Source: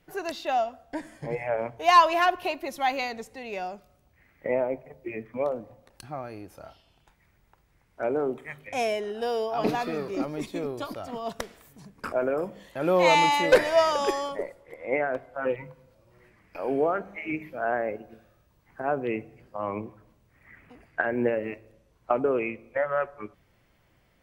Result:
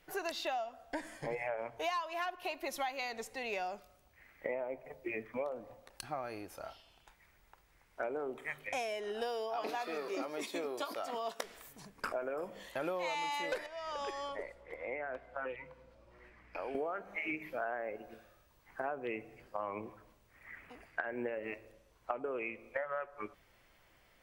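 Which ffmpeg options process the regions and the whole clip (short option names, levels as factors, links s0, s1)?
-filter_complex "[0:a]asettb=1/sr,asplit=3[s0][s1][s2];[s0]atrim=end=9.564[s3];[s1]atrim=start=9.56:end=11.44,asetpts=PTS-STARTPTS,afade=t=in:d=0.004:c=qsin,afade=t=out:st=1.876:d=0.004:c=qsin,highpass=280,asplit=2[s4][s5];[s5]adelay=18,volume=0.237[s6];[s4][s6]amix=inputs=2:normalize=0,atrim=end_sample=82908[s7];[s2]atrim=start=11.436[s8];[s3][s7]acrossfade=d=0.004:c1=hsin:c2=qsin[s9];[s9][s8]acrossfade=d=0.004:c1=qsin:c2=hsin,asettb=1/sr,asplit=3[s10][s11][s12];[s10]atrim=end=13.664[s13];[s11]atrim=start=13.66:end=16.75,asetpts=PTS-STARTPTS,afade=t=in:d=0.004:c=qsin,afade=t=out:st=3.086:d=0.004:c=qsin,aemphasis=mode=reproduction:type=50fm,acrossover=split=190|1700[s14][s15][s16];[s14]acompressor=threshold=0.00112:ratio=4[s17];[s15]acompressor=threshold=0.0112:ratio=4[s18];[s16]acompressor=threshold=0.00398:ratio=4[s19];[s17][s18][s19]amix=inputs=3:normalize=0,aeval=exprs='val(0)+0.00112*(sin(2*PI*60*n/s)+sin(2*PI*2*60*n/s)/2+sin(2*PI*3*60*n/s)/3+sin(2*PI*4*60*n/s)/4+sin(2*PI*5*60*n/s)/5)':c=same[s20];[s12]atrim=start=16.746[s21];[s13][s20]acrossfade=d=0.004:c1=hsin:c2=qsin[s22];[s22][s21]acrossfade=d=0.004:c1=qsin:c2=hsin,equalizer=f=130:t=o:w=3:g=-11,acompressor=threshold=0.0158:ratio=12,volume=1.26"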